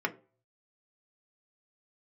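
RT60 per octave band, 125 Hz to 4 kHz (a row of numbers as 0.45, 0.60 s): 0.80, 0.35, 0.45, 0.35, 0.25, 0.20 s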